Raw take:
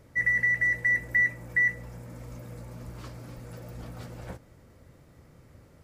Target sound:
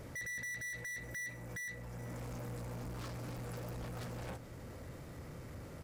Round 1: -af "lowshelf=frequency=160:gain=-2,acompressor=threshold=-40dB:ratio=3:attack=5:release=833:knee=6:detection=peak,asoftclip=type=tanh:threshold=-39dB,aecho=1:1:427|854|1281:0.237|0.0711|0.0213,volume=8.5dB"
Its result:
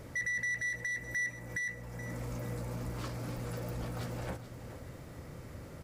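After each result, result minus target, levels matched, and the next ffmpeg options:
soft clipping: distortion −8 dB; echo-to-direct +6 dB
-af "lowshelf=frequency=160:gain=-2,acompressor=threshold=-40dB:ratio=3:attack=5:release=833:knee=6:detection=peak,asoftclip=type=tanh:threshold=-49dB,aecho=1:1:427|854|1281:0.237|0.0711|0.0213,volume=8.5dB"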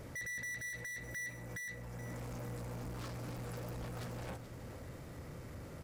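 echo-to-direct +6 dB
-af "lowshelf=frequency=160:gain=-2,acompressor=threshold=-40dB:ratio=3:attack=5:release=833:knee=6:detection=peak,asoftclip=type=tanh:threshold=-49dB,aecho=1:1:427|854|1281:0.119|0.0357|0.0107,volume=8.5dB"

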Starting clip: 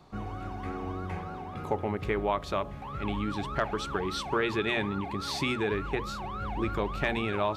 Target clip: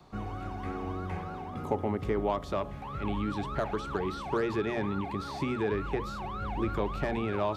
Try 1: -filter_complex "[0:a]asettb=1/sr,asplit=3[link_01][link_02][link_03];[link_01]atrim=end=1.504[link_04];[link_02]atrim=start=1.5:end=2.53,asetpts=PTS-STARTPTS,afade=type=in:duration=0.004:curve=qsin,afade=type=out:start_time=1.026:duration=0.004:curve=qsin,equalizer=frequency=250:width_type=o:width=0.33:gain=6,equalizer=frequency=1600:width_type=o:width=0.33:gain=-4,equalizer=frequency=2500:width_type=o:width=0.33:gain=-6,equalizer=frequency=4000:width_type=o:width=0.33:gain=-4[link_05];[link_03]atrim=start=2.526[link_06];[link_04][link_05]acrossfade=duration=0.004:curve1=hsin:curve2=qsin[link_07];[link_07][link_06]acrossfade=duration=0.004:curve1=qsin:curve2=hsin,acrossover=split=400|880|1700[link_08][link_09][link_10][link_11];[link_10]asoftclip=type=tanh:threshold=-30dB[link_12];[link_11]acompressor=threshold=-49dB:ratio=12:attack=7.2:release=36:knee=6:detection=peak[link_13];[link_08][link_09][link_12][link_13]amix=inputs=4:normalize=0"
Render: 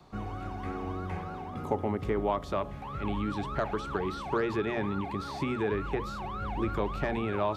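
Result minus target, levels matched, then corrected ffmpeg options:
soft clipping: distortion −7 dB
-filter_complex "[0:a]asettb=1/sr,asplit=3[link_01][link_02][link_03];[link_01]atrim=end=1.504[link_04];[link_02]atrim=start=1.5:end=2.53,asetpts=PTS-STARTPTS,afade=type=in:duration=0.004:curve=qsin,afade=type=out:start_time=1.026:duration=0.004:curve=qsin,equalizer=frequency=250:width_type=o:width=0.33:gain=6,equalizer=frequency=1600:width_type=o:width=0.33:gain=-4,equalizer=frequency=2500:width_type=o:width=0.33:gain=-6,equalizer=frequency=4000:width_type=o:width=0.33:gain=-4[link_05];[link_03]atrim=start=2.526[link_06];[link_04][link_05]acrossfade=duration=0.004:curve1=hsin:curve2=qsin[link_07];[link_07][link_06]acrossfade=duration=0.004:curve1=qsin:curve2=hsin,acrossover=split=400|880|1700[link_08][link_09][link_10][link_11];[link_10]asoftclip=type=tanh:threshold=-37dB[link_12];[link_11]acompressor=threshold=-49dB:ratio=12:attack=7.2:release=36:knee=6:detection=peak[link_13];[link_08][link_09][link_12][link_13]amix=inputs=4:normalize=0"

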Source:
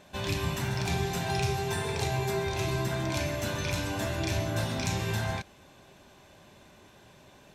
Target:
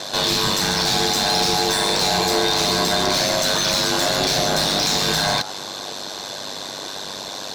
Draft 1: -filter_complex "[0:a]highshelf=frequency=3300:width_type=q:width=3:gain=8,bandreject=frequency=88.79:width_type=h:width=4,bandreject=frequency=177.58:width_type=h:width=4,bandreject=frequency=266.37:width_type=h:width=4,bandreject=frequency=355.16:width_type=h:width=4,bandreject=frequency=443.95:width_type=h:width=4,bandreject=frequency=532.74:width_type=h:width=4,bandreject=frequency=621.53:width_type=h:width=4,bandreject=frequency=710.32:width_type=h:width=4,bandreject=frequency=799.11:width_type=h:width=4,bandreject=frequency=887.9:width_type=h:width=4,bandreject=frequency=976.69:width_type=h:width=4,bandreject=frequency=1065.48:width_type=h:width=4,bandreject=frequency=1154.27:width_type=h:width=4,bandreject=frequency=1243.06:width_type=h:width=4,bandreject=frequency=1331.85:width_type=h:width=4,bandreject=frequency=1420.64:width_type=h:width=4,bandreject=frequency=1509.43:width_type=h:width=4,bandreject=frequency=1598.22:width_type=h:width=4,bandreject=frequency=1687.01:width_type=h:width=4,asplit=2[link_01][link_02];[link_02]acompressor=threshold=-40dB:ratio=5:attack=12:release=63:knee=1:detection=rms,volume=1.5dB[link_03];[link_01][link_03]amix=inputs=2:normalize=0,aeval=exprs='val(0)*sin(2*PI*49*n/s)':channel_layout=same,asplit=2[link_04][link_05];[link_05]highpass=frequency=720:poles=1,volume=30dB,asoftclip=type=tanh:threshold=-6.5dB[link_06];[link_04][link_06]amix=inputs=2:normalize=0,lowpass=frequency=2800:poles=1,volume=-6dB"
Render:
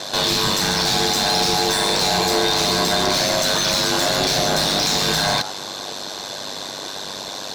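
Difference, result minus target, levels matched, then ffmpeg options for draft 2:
downward compressor: peak gain reduction −9 dB
-filter_complex "[0:a]highshelf=frequency=3300:width_type=q:width=3:gain=8,bandreject=frequency=88.79:width_type=h:width=4,bandreject=frequency=177.58:width_type=h:width=4,bandreject=frequency=266.37:width_type=h:width=4,bandreject=frequency=355.16:width_type=h:width=4,bandreject=frequency=443.95:width_type=h:width=4,bandreject=frequency=532.74:width_type=h:width=4,bandreject=frequency=621.53:width_type=h:width=4,bandreject=frequency=710.32:width_type=h:width=4,bandreject=frequency=799.11:width_type=h:width=4,bandreject=frequency=887.9:width_type=h:width=4,bandreject=frequency=976.69:width_type=h:width=4,bandreject=frequency=1065.48:width_type=h:width=4,bandreject=frequency=1154.27:width_type=h:width=4,bandreject=frequency=1243.06:width_type=h:width=4,bandreject=frequency=1331.85:width_type=h:width=4,bandreject=frequency=1420.64:width_type=h:width=4,bandreject=frequency=1509.43:width_type=h:width=4,bandreject=frequency=1598.22:width_type=h:width=4,bandreject=frequency=1687.01:width_type=h:width=4,asplit=2[link_01][link_02];[link_02]acompressor=threshold=-51dB:ratio=5:attack=12:release=63:knee=1:detection=rms,volume=1.5dB[link_03];[link_01][link_03]amix=inputs=2:normalize=0,aeval=exprs='val(0)*sin(2*PI*49*n/s)':channel_layout=same,asplit=2[link_04][link_05];[link_05]highpass=frequency=720:poles=1,volume=30dB,asoftclip=type=tanh:threshold=-6.5dB[link_06];[link_04][link_06]amix=inputs=2:normalize=0,lowpass=frequency=2800:poles=1,volume=-6dB"

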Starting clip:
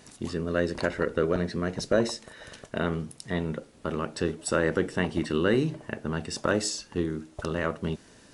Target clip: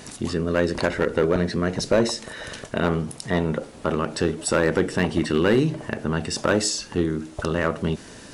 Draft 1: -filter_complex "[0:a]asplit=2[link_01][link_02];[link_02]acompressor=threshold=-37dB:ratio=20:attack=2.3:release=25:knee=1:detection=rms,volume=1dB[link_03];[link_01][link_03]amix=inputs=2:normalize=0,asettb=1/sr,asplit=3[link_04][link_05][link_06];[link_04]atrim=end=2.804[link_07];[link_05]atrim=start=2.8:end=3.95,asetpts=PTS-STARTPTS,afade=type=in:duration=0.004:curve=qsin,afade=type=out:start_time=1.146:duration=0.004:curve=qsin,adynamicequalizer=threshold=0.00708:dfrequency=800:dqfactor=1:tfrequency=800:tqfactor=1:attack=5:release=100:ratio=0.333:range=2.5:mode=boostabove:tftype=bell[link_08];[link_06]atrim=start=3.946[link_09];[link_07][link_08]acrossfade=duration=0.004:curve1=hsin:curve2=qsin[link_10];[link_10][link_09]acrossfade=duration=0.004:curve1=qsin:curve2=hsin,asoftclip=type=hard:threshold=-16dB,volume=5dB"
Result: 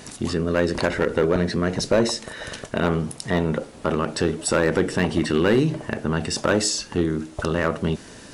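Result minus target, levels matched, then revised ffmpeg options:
downward compressor: peak gain reduction −6.5 dB
-filter_complex "[0:a]asplit=2[link_01][link_02];[link_02]acompressor=threshold=-44dB:ratio=20:attack=2.3:release=25:knee=1:detection=rms,volume=1dB[link_03];[link_01][link_03]amix=inputs=2:normalize=0,asettb=1/sr,asplit=3[link_04][link_05][link_06];[link_04]atrim=end=2.804[link_07];[link_05]atrim=start=2.8:end=3.95,asetpts=PTS-STARTPTS,afade=type=in:duration=0.004:curve=qsin,afade=type=out:start_time=1.146:duration=0.004:curve=qsin,adynamicequalizer=threshold=0.00708:dfrequency=800:dqfactor=1:tfrequency=800:tqfactor=1:attack=5:release=100:ratio=0.333:range=2.5:mode=boostabove:tftype=bell[link_08];[link_06]atrim=start=3.946[link_09];[link_07][link_08]acrossfade=duration=0.004:curve1=hsin:curve2=qsin[link_10];[link_10][link_09]acrossfade=duration=0.004:curve1=qsin:curve2=hsin,asoftclip=type=hard:threshold=-16dB,volume=5dB"

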